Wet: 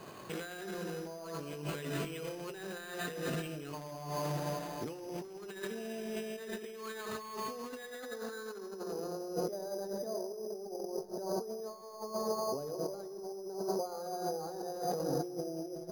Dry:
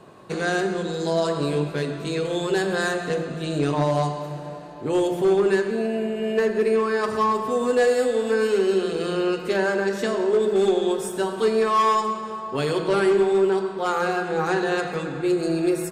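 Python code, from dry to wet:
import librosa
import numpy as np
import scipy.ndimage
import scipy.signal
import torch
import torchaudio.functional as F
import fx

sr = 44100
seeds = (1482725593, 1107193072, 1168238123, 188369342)

p1 = fx.tracing_dist(x, sr, depth_ms=0.03)
p2 = scipy.signal.lfilter([1.0, -0.8], [1.0], p1)
p3 = fx.over_compress(p2, sr, threshold_db=-45.0, ratio=-1.0)
p4 = fx.filter_sweep_lowpass(p3, sr, from_hz=4000.0, to_hz=650.0, start_s=6.91, end_s=9.39, q=2.9)
p5 = p4 + fx.echo_feedback(p4, sr, ms=213, feedback_pct=52, wet_db=-21.0, dry=0)
p6 = np.repeat(scipy.signal.resample_poly(p5, 1, 8), 8)[:len(p5)]
y = F.gain(torch.from_numpy(p6), 3.0).numpy()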